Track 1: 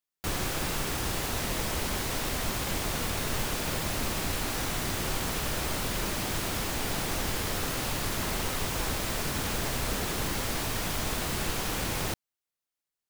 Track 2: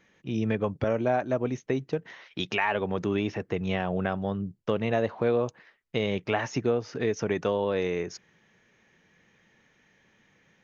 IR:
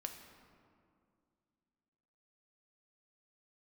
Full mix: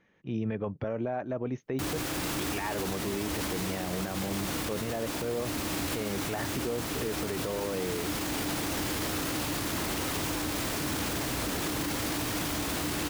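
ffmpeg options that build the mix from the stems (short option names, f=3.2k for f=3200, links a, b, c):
-filter_complex "[0:a]highpass=62,equalizer=f=300:w=7.6:g=14,adelay=1550,volume=-2dB[a];[1:a]lowpass=f=2k:p=1,volume=-9.5dB,asplit=2[b][c];[c]apad=whole_len=645967[d];[a][d]sidechaincompress=threshold=-38dB:ratio=4:attack=5.3:release=1290[e];[e][b]amix=inputs=2:normalize=0,acontrast=87,alimiter=limit=-23dB:level=0:latency=1:release=19"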